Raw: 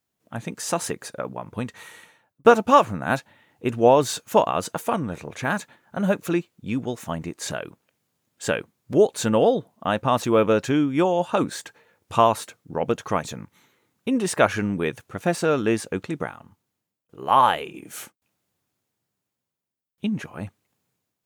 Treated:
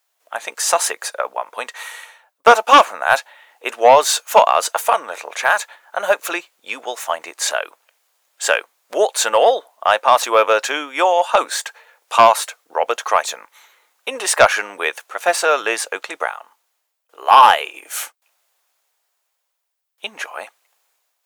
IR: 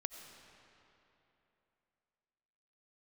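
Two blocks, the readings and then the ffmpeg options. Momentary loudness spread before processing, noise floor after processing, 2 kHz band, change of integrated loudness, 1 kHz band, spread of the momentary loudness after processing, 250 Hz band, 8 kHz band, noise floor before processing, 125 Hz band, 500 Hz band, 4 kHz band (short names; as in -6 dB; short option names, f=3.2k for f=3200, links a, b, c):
16 LU, -73 dBFS, +11.0 dB, +6.5 dB, +9.0 dB, 17 LU, -11.0 dB, +11.5 dB, -83 dBFS, under -15 dB, +4.0 dB, +11.5 dB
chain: -af "highpass=f=610:w=0.5412,highpass=f=610:w=1.3066,aeval=exprs='0.708*sin(PI/2*2*val(0)/0.708)':c=same,volume=1.5dB"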